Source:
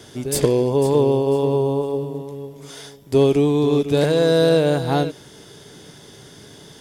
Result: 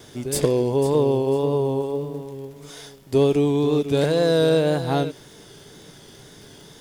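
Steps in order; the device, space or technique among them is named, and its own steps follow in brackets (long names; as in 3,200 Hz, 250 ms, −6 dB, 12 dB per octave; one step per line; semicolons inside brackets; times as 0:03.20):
vinyl LP (tape wow and flutter; surface crackle 77 per second −38 dBFS; pink noise bed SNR 37 dB)
level −2.5 dB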